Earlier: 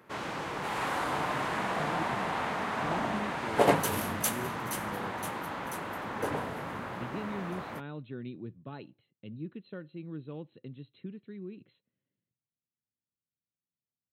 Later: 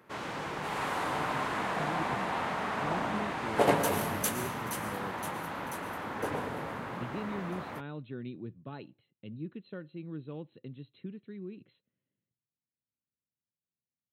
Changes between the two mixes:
background -4.5 dB; reverb: on, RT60 1.7 s

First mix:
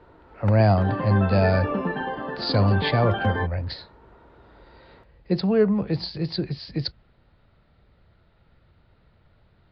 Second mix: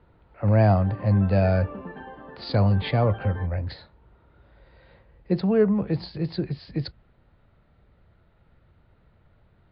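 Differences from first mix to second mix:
background -11.0 dB; master: add air absorption 230 m

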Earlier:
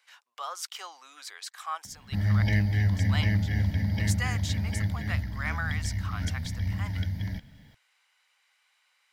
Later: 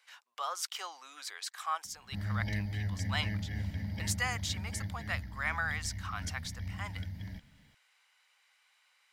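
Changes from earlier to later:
background -9.0 dB; master: add bell 110 Hz -2.5 dB 0.45 oct

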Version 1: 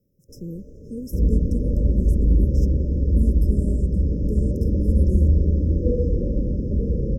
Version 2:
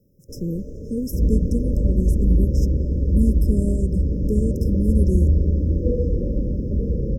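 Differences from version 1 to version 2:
speech +7.0 dB; first sound +8.5 dB

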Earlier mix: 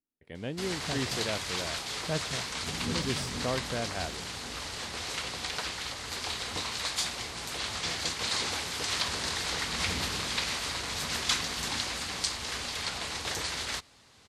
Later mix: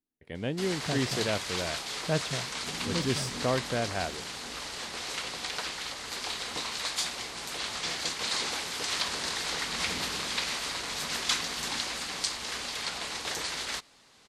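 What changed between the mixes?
speech +4.0 dB; background: add bell 84 Hz -12 dB 1.2 oct

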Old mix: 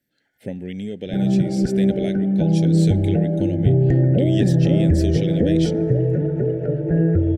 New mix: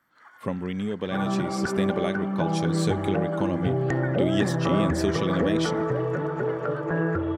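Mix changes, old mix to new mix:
first sound +12.0 dB; second sound: add tilt +4 dB/oct; master: remove Butterworth band-stop 1100 Hz, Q 0.96

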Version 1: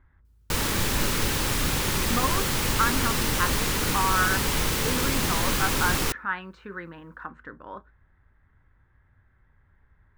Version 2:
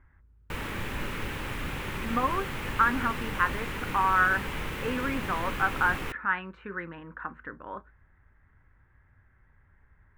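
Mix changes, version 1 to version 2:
background -8.0 dB; master: add resonant high shelf 3500 Hz -11 dB, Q 1.5

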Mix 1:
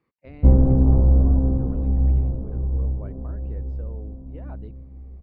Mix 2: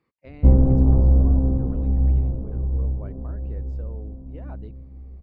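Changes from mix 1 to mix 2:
background: add air absorption 340 m; master: remove air absorption 110 m

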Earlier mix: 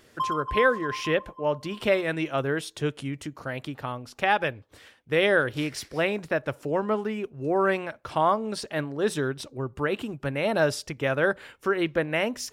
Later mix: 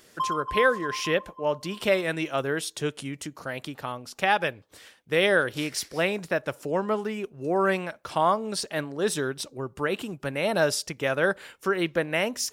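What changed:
speech: add tone controls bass -6 dB, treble +7 dB; master: add bell 180 Hz +11 dB 0.22 oct

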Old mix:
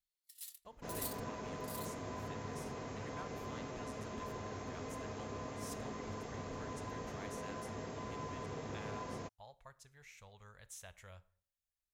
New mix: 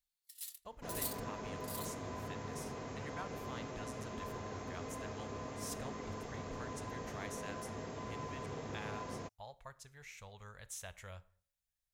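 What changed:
speech +5.0 dB; first sound +3.0 dB

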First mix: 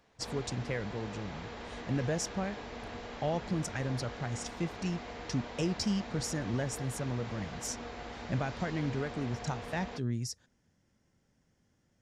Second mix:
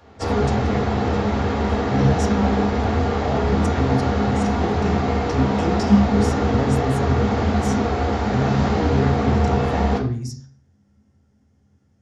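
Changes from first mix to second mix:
background +11.5 dB; reverb: on, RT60 0.45 s

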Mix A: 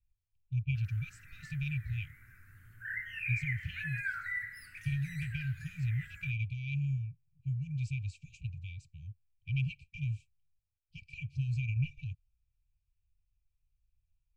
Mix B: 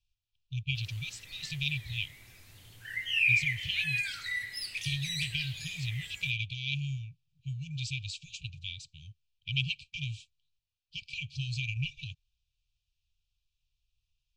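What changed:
speech -4.5 dB; master: remove EQ curve 100 Hz 0 dB, 270 Hz -7 dB, 670 Hz -25 dB, 1000 Hz -15 dB, 1500 Hz +11 dB, 3400 Hz -28 dB, 15000 Hz -8 dB

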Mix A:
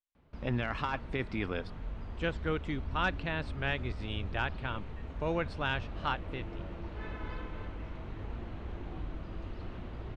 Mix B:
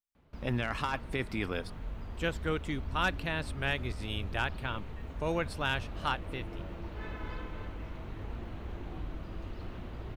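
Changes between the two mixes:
speech: remove air absorption 72 m; master: remove air absorption 69 m

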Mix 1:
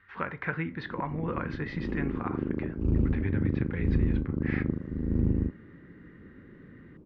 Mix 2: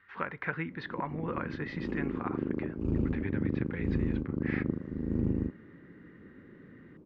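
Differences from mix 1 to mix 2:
speech: send -8.5 dB; master: add low shelf 95 Hz -11.5 dB

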